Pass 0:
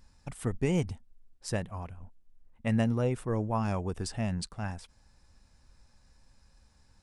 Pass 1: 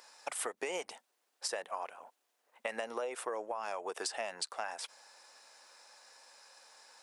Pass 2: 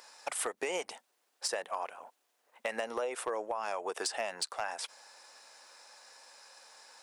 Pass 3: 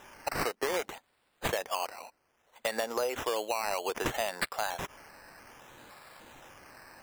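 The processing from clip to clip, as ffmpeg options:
-af "highpass=f=510:w=0.5412,highpass=f=510:w=1.3066,alimiter=level_in=1.78:limit=0.0631:level=0:latency=1:release=66,volume=0.562,acompressor=threshold=0.00501:ratio=12,volume=3.98"
-af "asoftclip=type=hard:threshold=0.0422,volume=1.41"
-af "acrusher=samples=10:mix=1:aa=0.000001:lfo=1:lforange=6:lforate=0.62,volume=1.5"

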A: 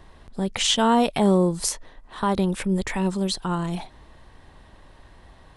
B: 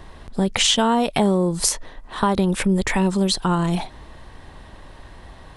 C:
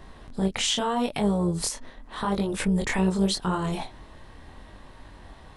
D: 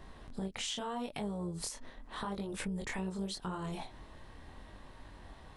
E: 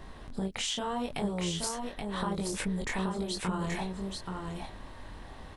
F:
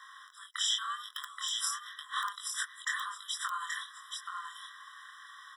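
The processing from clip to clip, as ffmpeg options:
-af "acompressor=threshold=0.0794:ratio=6,volume=2.37"
-af "alimiter=limit=0.316:level=0:latency=1:release=146,flanger=delay=19.5:depth=7.4:speed=0.81,tremolo=f=250:d=0.4"
-af "acompressor=threshold=0.0251:ratio=3,volume=0.531"
-af "aecho=1:1:827:0.596,volume=1.78"
-filter_complex "[0:a]asplit=2[s0][s1];[s1]aeval=exprs='(mod(10*val(0)+1,2)-1)/10':c=same,volume=0.531[s2];[s0][s2]amix=inputs=2:normalize=0,afftfilt=real='re*eq(mod(floor(b*sr/1024/1000),2),1)':imag='im*eq(mod(floor(b*sr/1024/1000),2),1)':win_size=1024:overlap=0.75,volume=1.19"

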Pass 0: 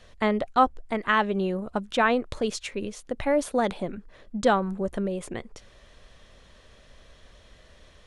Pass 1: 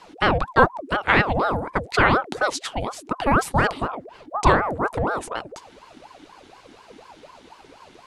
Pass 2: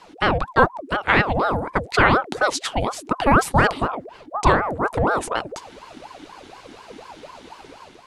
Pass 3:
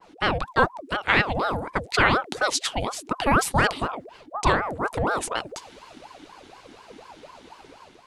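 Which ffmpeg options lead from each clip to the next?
-af "aeval=exprs='val(0)*sin(2*PI*660*n/s+660*0.6/4.1*sin(2*PI*4.1*n/s))':c=same,volume=2.37"
-af "dynaudnorm=f=150:g=5:m=1.88"
-af "adynamicequalizer=threshold=0.0282:dfrequency=2000:dqfactor=0.7:tfrequency=2000:tqfactor=0.7:attack=5:release=100:ratio=0.375:range=3.5:mode=boostabove:tftype=highshelf,volume=0.562"

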